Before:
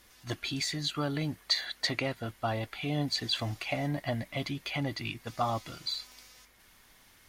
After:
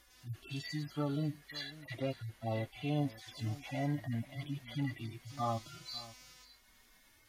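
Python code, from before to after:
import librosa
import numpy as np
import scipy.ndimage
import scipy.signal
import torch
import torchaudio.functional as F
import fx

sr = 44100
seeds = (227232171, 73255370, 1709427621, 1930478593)

y = fx.hpss_only(x, sr, part='harmonic')
y = y + 10.0 ** (-18.0 / 20.0) * np.pad(y, (int(546 * sr / 1000.0), 0))[:len(y)]
y = F.gain(torch.from_numpy(y), -2.0).numpy()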